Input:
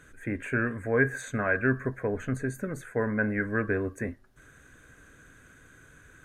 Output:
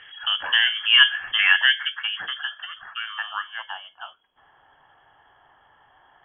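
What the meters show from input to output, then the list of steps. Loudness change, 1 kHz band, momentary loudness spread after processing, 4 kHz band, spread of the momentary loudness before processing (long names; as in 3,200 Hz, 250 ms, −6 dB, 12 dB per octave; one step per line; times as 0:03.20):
+10.0 dB, +4.5 dB, 19 LU, can't be measured, 9 LU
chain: parametric band 1,400 Hz −5.5 dB 0.42 octaves
voice inversion scrambler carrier 3,300 Hz
low-pass filter sweep 2,300 Hz → 900 Hz, 0:01.32–0:03.73
level +7 dB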